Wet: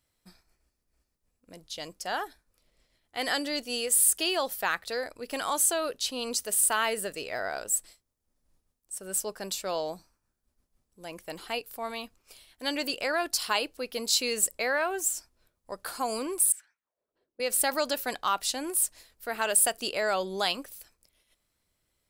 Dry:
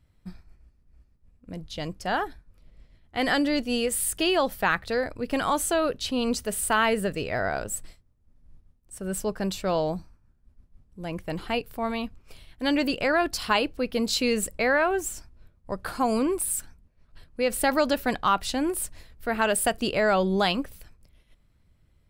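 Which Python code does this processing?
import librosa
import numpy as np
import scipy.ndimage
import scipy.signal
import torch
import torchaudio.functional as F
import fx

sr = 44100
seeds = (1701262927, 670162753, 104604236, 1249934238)

y = fx.bass_treble(x, sr, bass_db=-15, treble_db=11)
y = fx.auto_wah(y, sr, base_hz=330.0, top_hz=1900.0, q=2.5, full_db=-28.5, direction='up', at=(16.52, 17.4))
y = y * 10.0 ** (-5.0 / 20.0)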